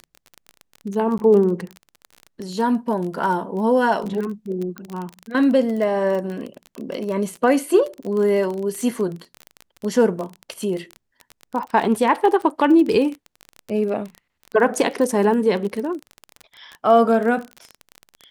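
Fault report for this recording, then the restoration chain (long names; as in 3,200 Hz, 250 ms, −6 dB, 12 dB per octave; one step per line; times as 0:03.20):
surface crackle 27 per second −25 dBFS
0:01.18–0:01.19: drop-out 10 ms
0:04.78: click −18 dBFS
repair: click removal
repair the gap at 0:01.18, 10 ms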